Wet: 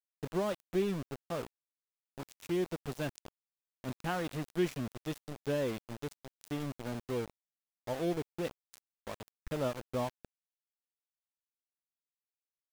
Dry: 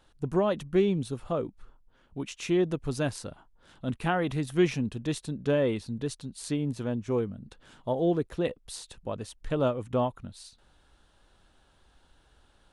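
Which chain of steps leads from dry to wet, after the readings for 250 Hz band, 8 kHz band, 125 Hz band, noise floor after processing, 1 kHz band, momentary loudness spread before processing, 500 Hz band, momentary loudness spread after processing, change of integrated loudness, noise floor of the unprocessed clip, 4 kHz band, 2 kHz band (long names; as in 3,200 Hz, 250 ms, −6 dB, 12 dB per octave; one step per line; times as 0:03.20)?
−8.0 dB, −8.0 dB, −8.5 dB, below −85 dBFS, −6.5 dB, 14 LU, −7.5 dB, 14 LU, −7.5 dB, −64 dBFS, −6.0 dB, −6.0 dB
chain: mains hum 60 Hz, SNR 28 dB
centre clipping without the shift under −30.5 dBFS
level −7.5 dB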